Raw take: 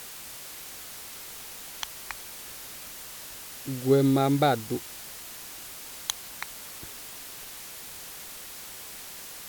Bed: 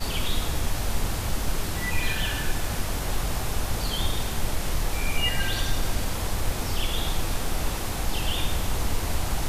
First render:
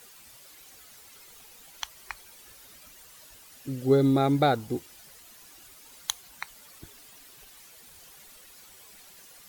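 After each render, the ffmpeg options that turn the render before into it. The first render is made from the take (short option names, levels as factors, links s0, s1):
-af "afftdn=nr=12:nf=-42"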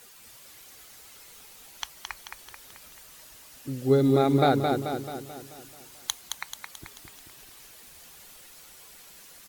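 -af "aecho=1:1:218|436|654|872|1090|1308|1526:0.562|0.292|0.152|0.0791|0.0411|0.0214|0.0111"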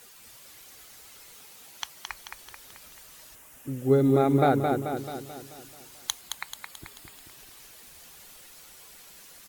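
-filter_complex "[0:a]asettb=1/sr,asplit=3[s0][s1][s2];[s0]atrim=end=1.354[s3];[s1]atrim=start=1.35:end=2.07,asetpts=PTS-STARTPTS,afade=t=in:d=0.004:c=qsin,afade=t=out:st=0.716:d=0.004:c=qsin,highpass=78[s4];[s2]atrim=start=2.066[s5];[s3][s4]acrossfade=d=0.004:c1=hsin:c2=qsin[s6];[s6][s5]acrossfade=d=0.004:c1=qsin:c2=hsin,asettb=1/sr,asplit=3[s7][s8][s9];[s7]atrim=end=3.354[s10];[s8]atrim=start=3.35:end=4.97,asetpts=PTS-STARTPTS,afade=t=in:d=0.004:c=qsin,afade=t=out:st=1.616:d=0.004:c=qsin,equalizer=f=4400:t=o:w=0.77:g=-12[s11];[s9]atrim=start=4.966[s12];[s10][s11]acrossfade=d=0.004:c1=hsin:c2=qsin[s13];[s13][s12]acrossfade=d=0.004:c1=qsin:c2=hsin,asettb=1/sr,asplit=3[s14][s15][s16];[s14]atrim=end=6.214[s17];[s15]atrim=start=6.21:end=7.24,asetpts=PTS-STARTPTS,afade=t=in:d=0.004:c=qsin,afade=t=out:st=1.026:d=0.004:c=qsin,bandreject=f=5900:w=7.5[s18];[s16]atrim=start=7.236[s19];[s17][s18]acrossfade=d=0.004:c1=hsin:c2=qsin[s20];[s20][s19]acrossfade=d=0.004:c1=qsin:c2=hsin"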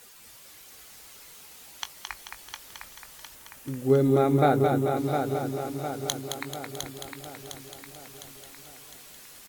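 -filter_complex "[0:a]asplit=2[s0][s1];[s1]adelay=20,volume=0.251[s2];[s0][s2]amix=inputs=2:normalize=0,asplit=2[s3][s4];[s4]aecho=0:1:707|1414|2121|2828|3535|4242:0.473|0.246|0.128|0.0665|0.0346|0.018[s5];[s3][s5]amix=inputs=2:normalize=0"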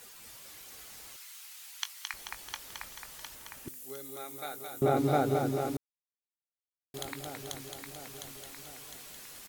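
-filter_complex "[0:a]asettb=1/sr,asplit=3[s0][s1][s2];[s0]atrim=end=1.164[s3];[s1]atrim=start=1.16:end=2.14,asetpts=PTS-STARTPTS,afade=t=in:d=0.004:c=qsin,afade=t=out:st=0.976:d=0.004:c=qsin,highpass=1400[s4];[s2]atrim=start=2.136[s5];[s3][s4]acrossfade=d=0.004:c1=hsin:c2=qsin[s6];[s6][s5]acrossfade=d=0.004:c1=qsin:c2=hsin,asettb=1/sr,asplit=3[s7][s8][s9];[s7]atrim=end=3.684[s10];[s8]atrim=start=3.68:end=4.82,asetpts=PTS-STARTPTS,afade=t=in:d=0.004:c=qsin,afade=t=out:st=1.136:d=0.004:c=qsin,aderivative[s11];[s9]atrim=start=4.816[s12];[s10][s11]acrossfade=d=0.004:c1=hsin:c2=qsin[s13];[s13][s12]acrossfade=d=0.004:c1=qsin:c2=hsin,asplit=3[s14][s15][s16];[s14]atrim=end=5.77,asetpts=PTS-STARTPTS,afade=t=out:st=5.766:d=0.004:c=hsin[s17];[s15]atrim=start=5.77:end=6.94,asetpts=PTS-STARTPTS,volume=0[s18];[s16]atrim=start=6.94,asetpts=PTS-STARTPTS,afade=t=in:d=0.004:c=hsin[s19];[s17][s18][s19]concat=n=3:v=0:a=1"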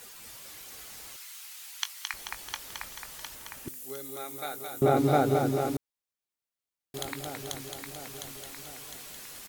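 -af "volume=1.5"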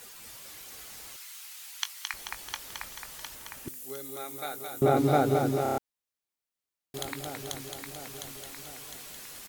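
-filter_complex "[0:a]asplit=6[s0][s1][s2][s3][s4][s5];[s0]atrim=end=5.662[s6];[s1]atrim=start=5.628:end=5.662[s7];[s2]atrim=start=5.628:end=5.662[s8];[s3]atrim=start=5.628:end=5.662[s9];[s4]atrim=start=5.628:end=5.662[s10];[s5]atrim=start=5.778[s11];[s6][s7]acrossfade=d=0.004:c1=hsin:c2=hsin[s12];[s12][s8]acrossfade=d=0.004:c1=hsin:c2=hsin[s13];[s13][s9]acrossfade=d=0.004:c1=hsin:c2=hsin[s14];[s14][s10]acrossfade=d=0.004:c1=hsin:c2=hsin[s15];[s15][s11]acrossfade=d=0.004:c1=hsin:c2=hsin"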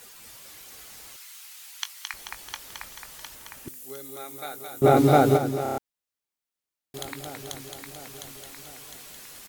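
-filter_complex "[0:a]asplit=3[s0][s1][s2];[s0]afade=t=out:st=4.83:d=0.02[s3];[s1]acontrast=63,afade=t=in:st=4.83:d=0.02,afade=t=out:st=5.36:d=0.02[s4];[s2]afade=t=in:st=5.36:d=0.02[s5];[s3][s4][s5]amix=inputs=3:normalize=0"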